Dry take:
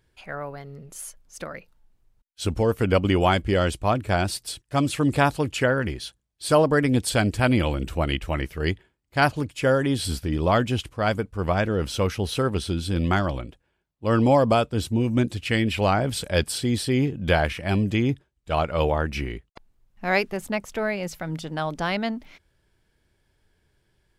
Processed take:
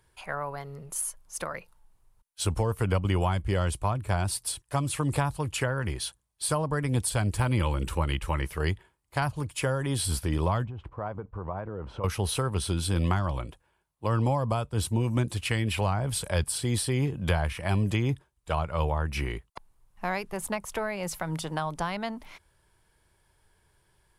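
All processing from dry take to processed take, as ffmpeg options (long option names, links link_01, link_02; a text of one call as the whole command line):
ffmpeg -i in.wav -filter_complex "[0:a]asettb=1/sr,asplit=3[link_01][link_02][link_03];[link_01]atrim=end=7.404[link_04];[link_02]atrim=start=7.4:end=8.47,asetpts=PTS-STARTPTS,afade=type=in:duration=0.004:curve=qsin,afade=type=out:start_time=1.066:duration=0.004:curve=qsin,deesser=0.7,asuperstop=centerf=690:order=4:qfactor=4.7,highshelf=frequency=12000:gain=-3.5[link_05];[link_03]atrim=start=8.466[link_06];[link_04][link_05]acrossfade=duration=0.004:curve1=hsin:curve2=qsin[link_07];[link_07][link_06]acrossfade=duration=0.004:curve1=qsin:curve2=hsin,asettb=1/sr,asplit=3[link_08][link_09][link_10];[link_08]atrim=end=10.654[link_11];[link_09]atrim=start=10.65:end=12.04,asetpts=PTS-STARTPTS,afade=type=in:duration=0.004:curve=qsin,afade=type=out:start_time=1.386:duration=0.004:curve=qsin,lowpass=1100,acompressor=threshold=-30dB:ratio=12:attack=3.2:release=140:knee=1:detection=peak[link_12];[link_10]atrim=start=12.036[link_13];[link_11][link_12]acrossfade=duration=0.004:curve1=hsin:curve2=qsin[link_14];[link_14][link_13]acrossfade=duration=0.004:curve1=qsin:curve2=hsin,equalizer=frequency=250:width_type=o:width=0.67:gain=-6,equalizer=frequency=1000:width_type=o:width=0.67:gain=9,equalizer=frequency=10000:width_type=o:width=0.67:gain=11,acrossover=split=180[link_15][link_16];[link_16]acompressor=threshold=-28dB:ratio=5[link_17];[link_15][link_17]amix=inputs=2:normalize=0" out.wav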